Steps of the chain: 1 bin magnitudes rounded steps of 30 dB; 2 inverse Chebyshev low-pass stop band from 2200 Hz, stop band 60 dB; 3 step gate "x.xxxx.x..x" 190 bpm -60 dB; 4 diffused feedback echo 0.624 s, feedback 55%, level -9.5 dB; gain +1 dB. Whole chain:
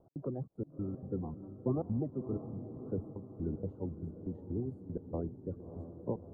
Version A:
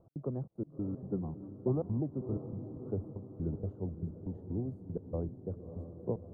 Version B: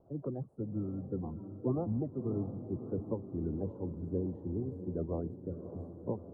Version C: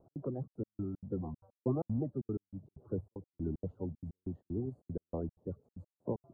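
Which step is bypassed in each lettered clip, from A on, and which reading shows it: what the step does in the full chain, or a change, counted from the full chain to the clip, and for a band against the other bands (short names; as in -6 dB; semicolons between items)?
1, 1 kHz band -2.5 dB; 3, crest factor change -2.0 dB; 4, echo-to-direct -8.0 dB to none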